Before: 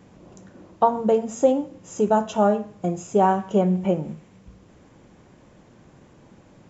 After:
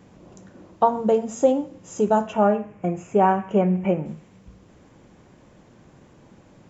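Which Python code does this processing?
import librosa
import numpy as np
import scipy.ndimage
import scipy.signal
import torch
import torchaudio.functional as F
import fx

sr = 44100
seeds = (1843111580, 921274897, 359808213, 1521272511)

y = fx.high_shelf_res(x, sr, hz=3100.0, db=-8.0, q=3.0, at=(2.27, 4.06))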